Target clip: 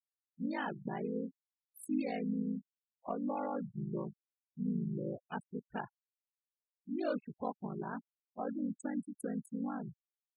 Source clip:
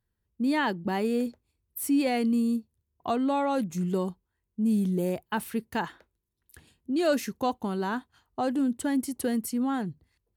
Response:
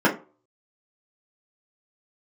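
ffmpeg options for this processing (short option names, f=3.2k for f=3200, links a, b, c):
-filter_complex "[0:a]afftfilt=real='re*gte(hypot(re,im),0.0501)':imag='im*gte(hypot(re,im),0.0501)':win_size=1024:overlap=0.75,aeval=exprs='val(0)*sin(2*PI*26*n/s)':c=same,asplit=2[a][b];[b]asetrate=37084,aresample=44100,atempo=1.18921,volume=-7dB[c];[a][c]amix=inputs=2:normalize=0,volume=-8.5dB"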